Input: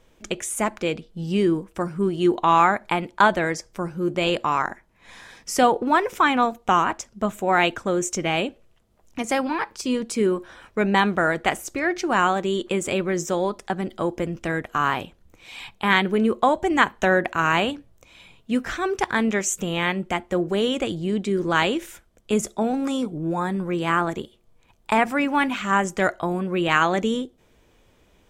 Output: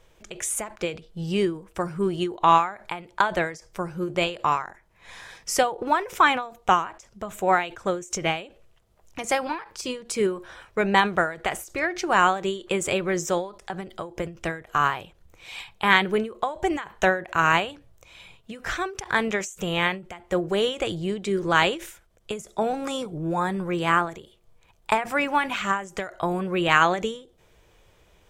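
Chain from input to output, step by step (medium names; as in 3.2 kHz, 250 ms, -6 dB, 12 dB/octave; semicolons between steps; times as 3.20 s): peaking EQ 250 Hz -11.5 dB 0.59 oct; endings held to a fixed fall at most 140 dB/s; trim +1.5 dB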